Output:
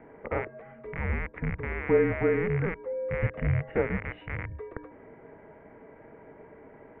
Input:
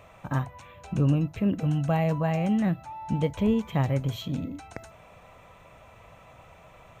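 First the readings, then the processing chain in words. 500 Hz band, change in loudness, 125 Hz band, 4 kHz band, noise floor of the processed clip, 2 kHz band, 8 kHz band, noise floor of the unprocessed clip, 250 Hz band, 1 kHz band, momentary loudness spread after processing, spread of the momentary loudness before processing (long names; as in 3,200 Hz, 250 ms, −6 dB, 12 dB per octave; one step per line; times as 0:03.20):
+4.0 dB, −2.5 dB, −5.5 dB, below −10 dB, −52 dBFS, +7.0 dB, can't be measured, −53 dBFS, −8.0 dB, −5.5 dB, 16 LU, 13 LU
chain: loose part that buzzes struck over −32 dBFS, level −21 dBFS
hollow resonant body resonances 220/820 Hz, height 12 dB, ringing for 35 ms
single-sideband voice off tune −360 Hz 350–2,400 Hz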